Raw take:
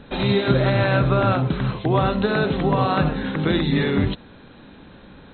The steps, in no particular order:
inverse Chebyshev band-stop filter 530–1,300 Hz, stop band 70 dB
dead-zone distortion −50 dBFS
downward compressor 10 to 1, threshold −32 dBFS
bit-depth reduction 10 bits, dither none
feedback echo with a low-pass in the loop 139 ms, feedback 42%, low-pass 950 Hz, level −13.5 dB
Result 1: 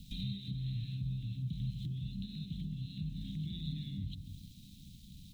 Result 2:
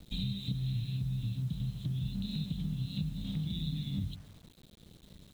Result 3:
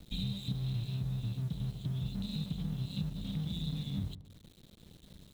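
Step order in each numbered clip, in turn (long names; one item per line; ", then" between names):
feedback echo with a low-pass in the loop, then dead-zone distortion, then bit-depth reduction, then downward compressor, then inverse Chebyshev band-stop filter
inverse Chebyshev band-stop filter, then dead-zone distortion, then downward compressor, then feedback echo with a low-pass in the loop, then bit-depth reduction
inverse Chebyshev band-stop filter, then downward compressor, then dead-zone distortion, then bit-depth reduction, then feedback echo with a low-pass in the loop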